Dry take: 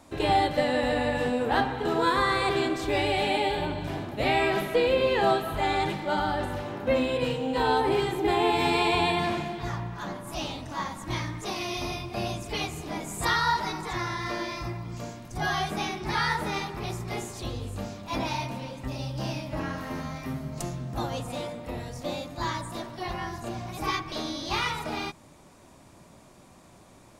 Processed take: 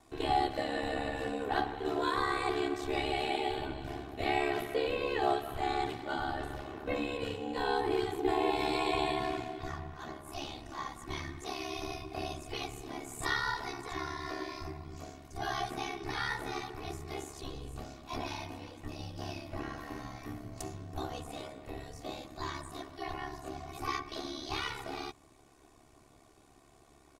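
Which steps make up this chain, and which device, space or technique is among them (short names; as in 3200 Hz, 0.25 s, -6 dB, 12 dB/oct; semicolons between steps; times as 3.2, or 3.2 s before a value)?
ring-modulated robot voice (ring modulator 35 Hz; comb 2.7 ms, depth 60%); gain -6 dB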